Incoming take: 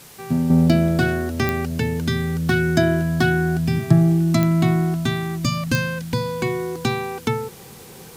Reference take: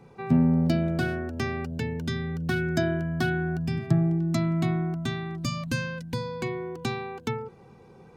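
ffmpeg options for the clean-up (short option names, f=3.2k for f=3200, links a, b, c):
-af "adeclick=t=4,afwtdn=0.0063,asetnsamples=n=441:p=0,asendcmd='0.5 volume volume -8dB',volume=0dB"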